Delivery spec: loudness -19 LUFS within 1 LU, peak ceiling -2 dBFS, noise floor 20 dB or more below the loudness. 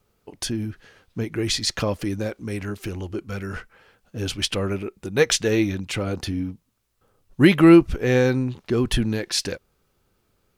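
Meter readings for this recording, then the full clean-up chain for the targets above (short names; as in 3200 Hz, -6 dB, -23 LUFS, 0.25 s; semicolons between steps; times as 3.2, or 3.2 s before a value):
loudness -22.0 LUFS; peak -3.5 dBFS; loudness target -19.0 LUFS
-> gain +3 dB; limiter -2 dBFS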